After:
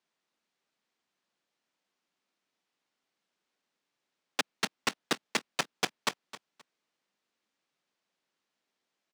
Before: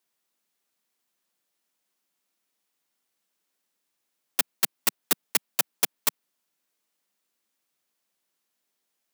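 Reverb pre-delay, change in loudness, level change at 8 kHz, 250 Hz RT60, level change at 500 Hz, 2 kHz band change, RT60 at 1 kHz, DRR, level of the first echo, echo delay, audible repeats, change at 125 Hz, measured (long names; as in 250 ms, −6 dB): no reverb audible, −7.5 dB, −10.0 dB, no reverb audible, +1.0 dB, 0.0 dB, no reverb audible, no reverb audible, −16.0 dB, 263 ms, 2, +1.0 dB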